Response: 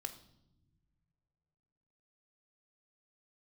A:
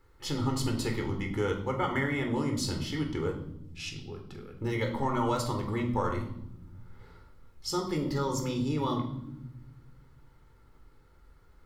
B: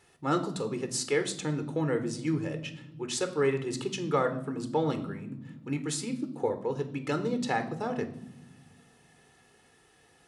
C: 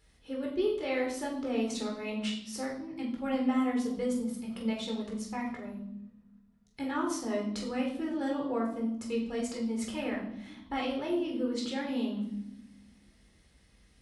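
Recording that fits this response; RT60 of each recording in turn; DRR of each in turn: B; no single decay rate, no single decay rate, no single decay rate; 2.5 dB, 8.0 dB, -1.5 dB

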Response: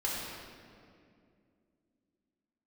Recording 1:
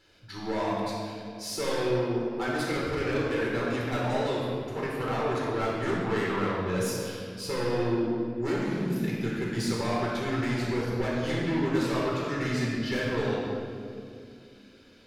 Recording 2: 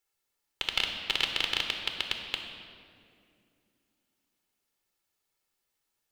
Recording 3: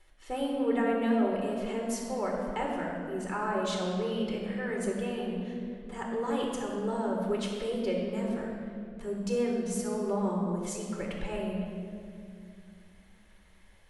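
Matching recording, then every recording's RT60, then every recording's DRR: 1; 2.4 s, 2.4 s, 2.4 s; -5.5 dB, 3.0 dB, -1.0 dB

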